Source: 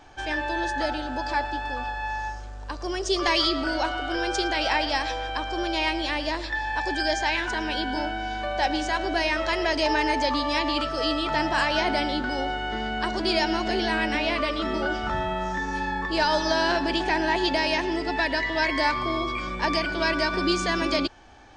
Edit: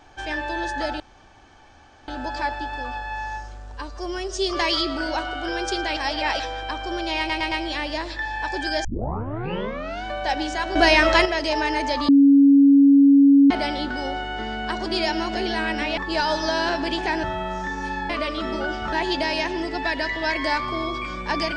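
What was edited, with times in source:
1.00 s: insert room tone 1.08 s
2.66–3.17 s: stretch 1.5×
4.63–5.06 s: reverse
5.85 s: stutter 0.11 s, 4 plays
7.18 s: tape start 1.20 s
9.09–9.59 s: gain +9 dB
10.42–11.84 s: bleep 279 Hz -9.5 dBFS
14.31–15.14 s: swap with 16.00–17.26 s

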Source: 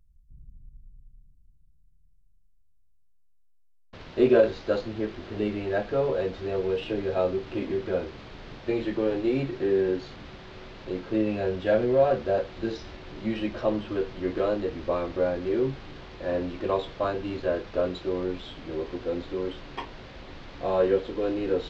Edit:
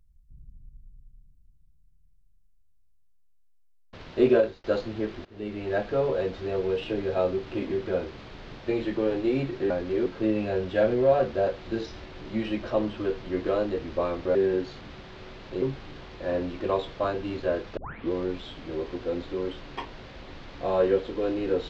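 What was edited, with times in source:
4.31–4.64 s: fade out
5.25–5.74 s: fade in, from -22 dB
9.70–10.97 s: swap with 15.26–15.62 s
17.77 s: tape start 0.35 s

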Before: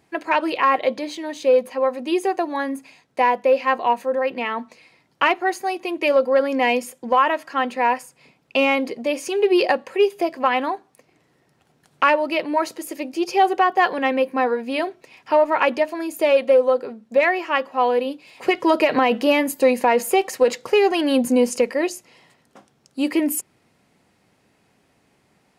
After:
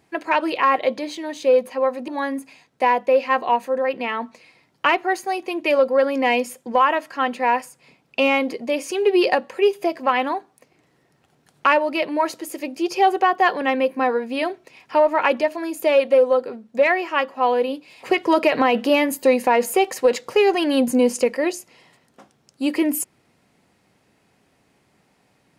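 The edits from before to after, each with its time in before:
2.08–2.45 s: delete

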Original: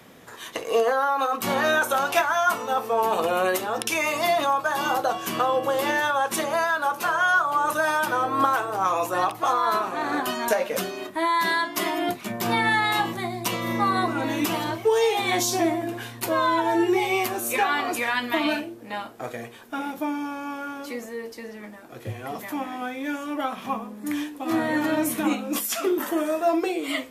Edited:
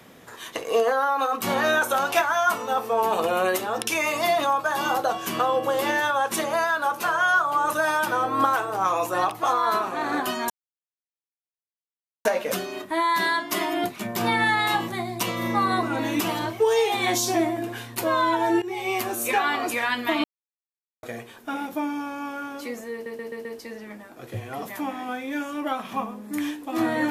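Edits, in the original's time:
10.50 s: insert silence 1.75 s
16.87–17.30 s: fade in, from -16 dB
18.49–19.28 s: mute
21.18 s: stutter 0.13 s, 5 plays

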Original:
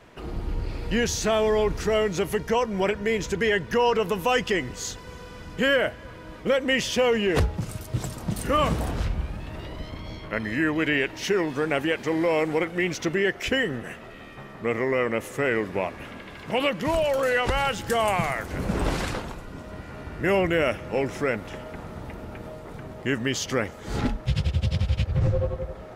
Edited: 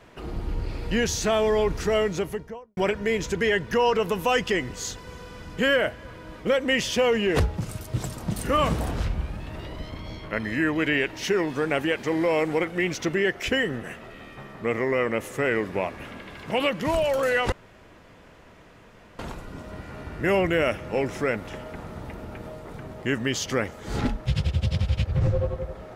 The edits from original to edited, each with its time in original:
2.00–2.77 s: studio fade out
17.52–19.19 s: room tone

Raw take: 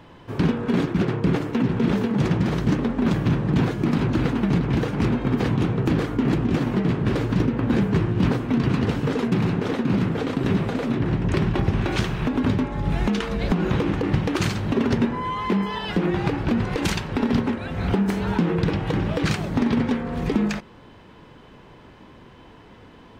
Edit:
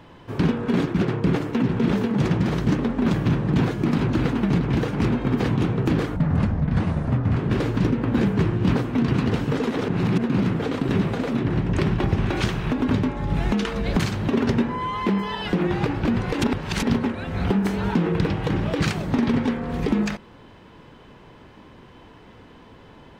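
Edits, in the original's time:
6.16–6.92 s: speed 63%
9.26–9.79 s: reverse
13.55–14.43 s: delete
16.87–17.26 s: reverse

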